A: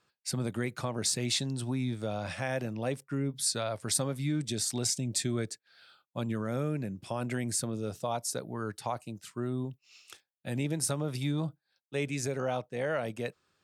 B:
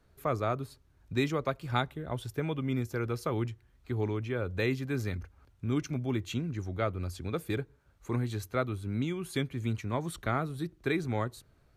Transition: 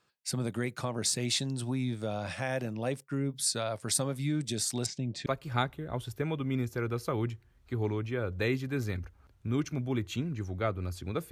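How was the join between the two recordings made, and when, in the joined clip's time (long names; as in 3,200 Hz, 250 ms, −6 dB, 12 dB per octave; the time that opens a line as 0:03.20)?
A
0:04.86–0:05.26: high-frequency loss of the air 190 metres
0:05.26: continue with B from 0:01.44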